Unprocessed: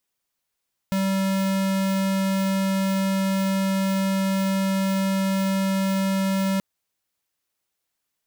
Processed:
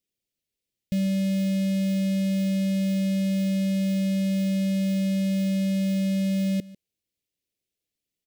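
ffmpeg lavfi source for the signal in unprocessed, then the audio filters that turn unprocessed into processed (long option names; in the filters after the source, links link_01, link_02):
-f lavfi -i "aevalsrc='0.075*(2*lt(mod(193*t,1),0.5)-1)':duration=5.68:sample_rate=44100"
-af "asuperstop=centerf=1100:order=4:qfactor=0.56,highshelf=frequency=3100:gain=-8.5,aecho=1:1:147:0.1"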